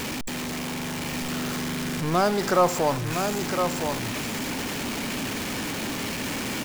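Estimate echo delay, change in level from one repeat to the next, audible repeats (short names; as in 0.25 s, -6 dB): 1.011 s, no steady repeat, 1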